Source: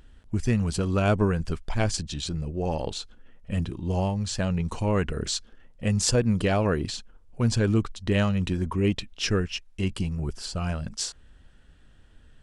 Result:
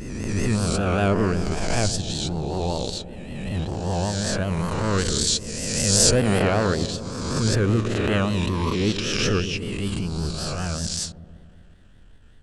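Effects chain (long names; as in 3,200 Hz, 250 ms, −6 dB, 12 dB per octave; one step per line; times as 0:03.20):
peak hold with a rise ahead of every peak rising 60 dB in 1.64 s
pitch vibrato 5.2 Hz 95 cents
transient designer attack −11 dB, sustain −7 dB
0:04.98–0:06.40: high-shelf EQ 5,200 Hz +7.5 dB
delay with a low-pass on its return 125 ms, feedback 69%, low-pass 580 Hz, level −10 dB
level +1 dB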